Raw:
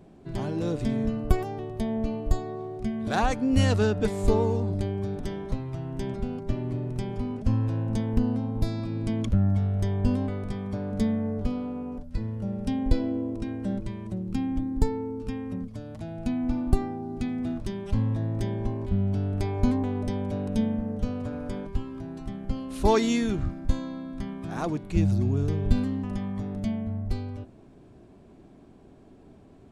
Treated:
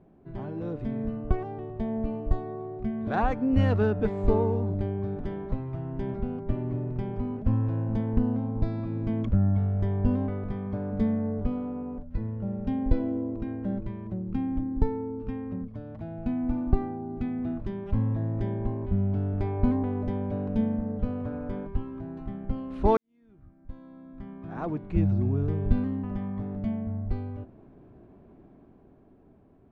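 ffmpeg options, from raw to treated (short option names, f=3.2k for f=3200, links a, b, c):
-filter_complex "[0:a]asplit=2[a][b];[a]atrim=end=22.97,asetpts=PTS-STARTPTS,afade=t=out:st=22.966:d=0.004:c=hsin[c];[b]atrim=start=22.97,asetpts=PTS-STARTPTS,afade=t=in:d=1.87:c=qua[d];[c][d]concat=n=2:v=0:a=1,lowpass=1.8k,dynaudnorm=f=240:g=11:m=5.5dB,volume=-5.5dB"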